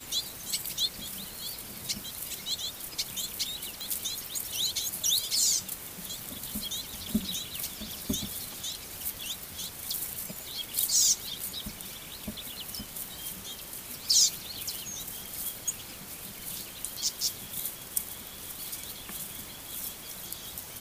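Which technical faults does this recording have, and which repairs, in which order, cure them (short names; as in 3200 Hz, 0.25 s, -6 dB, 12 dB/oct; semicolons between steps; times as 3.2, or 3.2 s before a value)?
crackle 31/s -38 dBFS
3.81 pop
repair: de-click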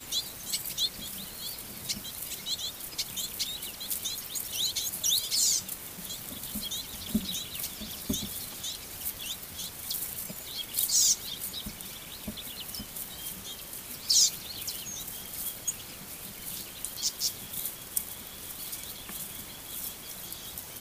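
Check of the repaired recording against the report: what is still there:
none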